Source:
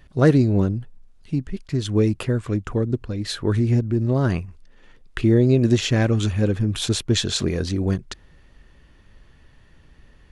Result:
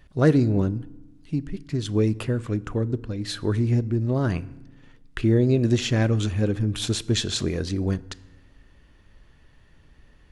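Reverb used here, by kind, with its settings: FDN reverb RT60 1 s, low-frequency decay 1.55×, high-frequency decay 0.7×, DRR 17.5 dB; trim -3 dB

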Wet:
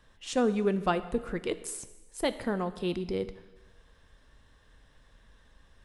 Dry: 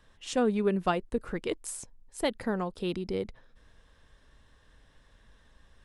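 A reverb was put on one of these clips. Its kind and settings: plate-style reverb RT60 1.2 s, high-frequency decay 0.95×, DRR 12 dB

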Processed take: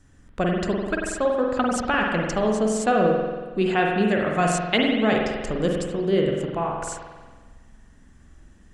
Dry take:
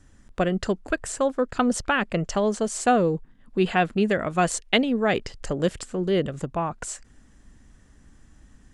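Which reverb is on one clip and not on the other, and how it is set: spring tank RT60 1.4 s, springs 46 ms, chirp 50 ms, DRR -0.5 dB; trim -1.5 dB

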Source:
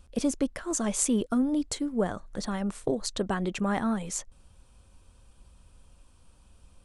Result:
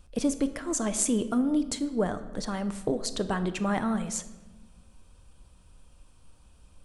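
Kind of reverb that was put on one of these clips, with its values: simulated room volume 730 m³, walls mixed, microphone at 0.48 m

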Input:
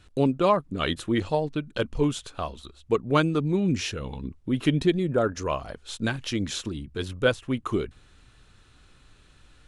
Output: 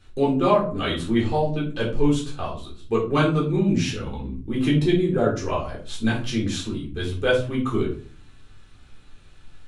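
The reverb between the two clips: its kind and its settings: simulated room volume 290 m³, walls furnished, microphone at 3.8 m; trim -5 dB

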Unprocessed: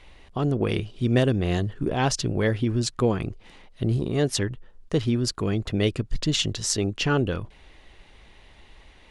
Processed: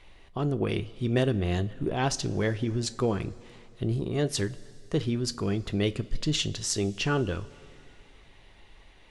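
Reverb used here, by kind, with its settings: two-slope reverb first 0.24 s, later 2.9 s, from -18 dB, DRR 11.5 dB; trim -4 dB

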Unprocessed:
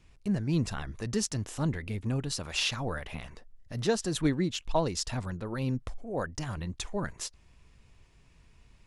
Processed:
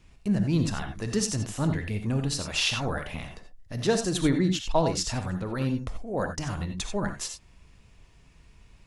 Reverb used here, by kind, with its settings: gated-style reverb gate 110 ms rising, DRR 6 dB; trim +3 dB

